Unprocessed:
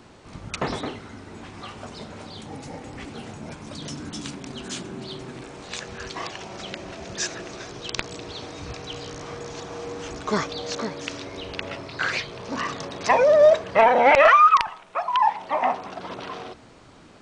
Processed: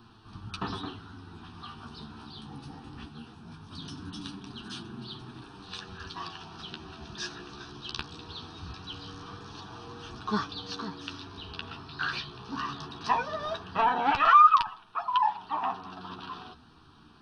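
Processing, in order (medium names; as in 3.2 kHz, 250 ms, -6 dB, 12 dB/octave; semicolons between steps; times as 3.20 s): flange 0.2 Hz, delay 8.6 ms, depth 5.9 ms, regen +27%; static phaser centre 2.1 kHz, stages 6; 3.07–3.71 s: detune thickener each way 18 cents -> 38 cents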